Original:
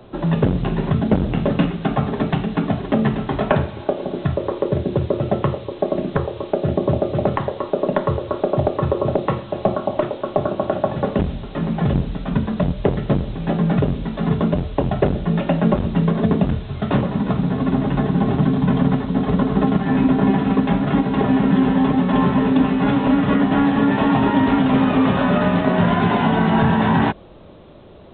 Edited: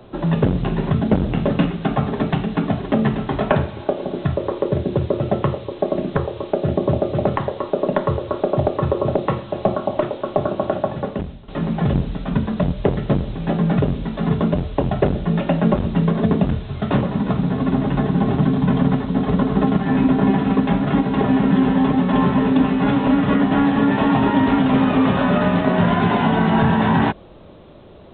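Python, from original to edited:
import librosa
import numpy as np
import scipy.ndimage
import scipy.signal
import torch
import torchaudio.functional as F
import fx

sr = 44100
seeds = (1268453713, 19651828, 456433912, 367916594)

y = fx.edit(x, sr, fx.fade_out_to(start_s=10.69, length_s=0.79, floor_db=-14.5), tone=tone)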